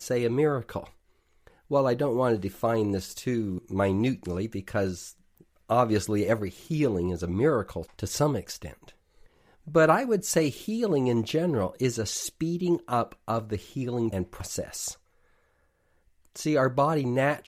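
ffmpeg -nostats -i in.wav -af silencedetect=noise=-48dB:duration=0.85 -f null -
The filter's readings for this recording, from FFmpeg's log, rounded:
silence_start: 14.95
silence_end: 16.25 | silence_duration: 1.30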